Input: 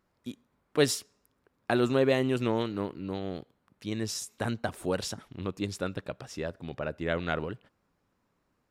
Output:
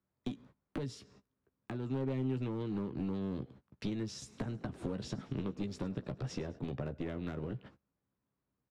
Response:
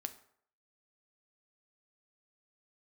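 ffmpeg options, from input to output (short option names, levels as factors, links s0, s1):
-filter_complex "[0:a]lowpass=5100,agate=range=0.0562:threshold=0.001:ratio=16:detection=peak,highpass=71,lowshelf=f=260:g=10.5,acompressor=threshold=0.0178:ratio=6,alimiter=level_in=1.26:limit=0.0631:level=0:latency=1:release=481,volume=0.794,acrossover=split=140|380[s0][s1][s2];[s0]acompressor=threshold=0.00178:ratio=4[s3];[s1]acompressor=threshold=0.00562:ratio=4[s4];[s2]acompressor=threshold=0.00158:ratio=4[s5];[s3][s4][s5]amix=inputs=3:normalize=0,aeval=exprs='clip(val(0),-1,0.00596)':c=same,asplit=2[s6][s7];[s7]adelay=15,volume=0.398[s8];[s6][s8]amix=inputs=2:normalize=0,asettb=1/sr,asplit=3[s9][s10][s11];[s9]atrim=end=4.154[s12];[s10]atrim=start=4.15:end=6.59,asetpts=PTS-STARTPTS,afade=t=in:d=0.004:c=qsin,afade=t=out:st=2.436:d=0.004:c=qsin,asplit=5[s13][s14][s15][s16][s17];[s14]adelay=105,afreqshift=51,volume=0.1[s18];[s15]adelay=210,afreqshift=102,volume=0.0537[s19];[s16]adelay=315,afreqshift=153,volume=0.0292[s20];[s17]adelay=420,afreqshift=204,volume=0.0157[s21];[s13][s18][s19][s20][s21]amix=inputs=5:normalize=0,atrim=end_sample=107604[s22];[s11]atrim=start=6.586[s23];[s12][s22]acrossfade=d=0.004:c1=hsin:c2=qsin[s24];[s24][s23]acrossfade=d=0.004:c1=qsin:c2=hsin,volume=2.66"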